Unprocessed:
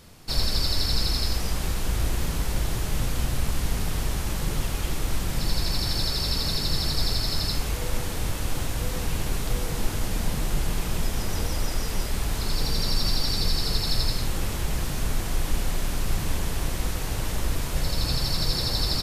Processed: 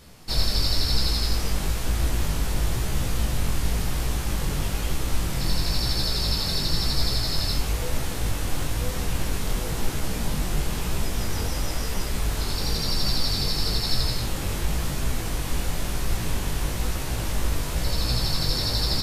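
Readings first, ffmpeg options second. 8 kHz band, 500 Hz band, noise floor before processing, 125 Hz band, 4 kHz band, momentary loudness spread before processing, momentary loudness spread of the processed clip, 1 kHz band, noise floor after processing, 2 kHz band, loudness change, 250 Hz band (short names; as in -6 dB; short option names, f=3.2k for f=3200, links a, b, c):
+1.0 dB, +1.0 dB, -30 dBFS, +1.5 dB, +1.0 dB, 5 LU, 5 LU, +1.0 dB, -29 dBFS, +1.0 dB, +1.0 dB, +1.0 dB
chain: -af "flanger=delay=15:depth=6.7:speed=1,volume=4dB"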